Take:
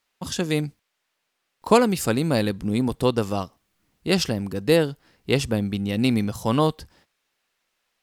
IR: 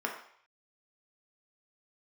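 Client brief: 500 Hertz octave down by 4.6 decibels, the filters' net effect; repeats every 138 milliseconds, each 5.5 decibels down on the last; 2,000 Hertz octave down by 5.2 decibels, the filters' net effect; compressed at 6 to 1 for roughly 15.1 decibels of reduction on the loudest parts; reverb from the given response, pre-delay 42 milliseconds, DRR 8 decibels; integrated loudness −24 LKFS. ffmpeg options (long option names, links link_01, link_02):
-filter_complex "[0:a]equalizer=frequency=500:width_type=o:gain=-5,equalizer=frequency=2000:width_type=o:gain=-7,acompressor=threshold=-30dB:ratio=6,aecho=1:1:138|276|414|552|690|828|966:0.531|0.281|0.149|0.079|0.0419|0.0222|0.0118,asplit=2[link_01][link_02];[1:a]atrim=start_sample=2205,adelay=42[link_03];[link_02][link_03]afir=irnorm=-1:irlink=0,volume=-14.5dB[link_04];[link_01][link_04]amix=inputs=2:normalize=0,volume=10dB"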